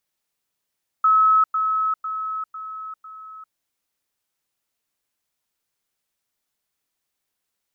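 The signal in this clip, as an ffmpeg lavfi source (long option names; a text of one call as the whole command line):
ffmpeg -f lavfi -i "aevalsrc='pow(10,(-12.5-6*floor(t/0.5))/20)*sin(2*PI*1290*t)*clip(min(mod(t,0.5),0.4-mod(t,0.5))/0.005,0,1)':duration=2.5:sample_rate=44100" out.wav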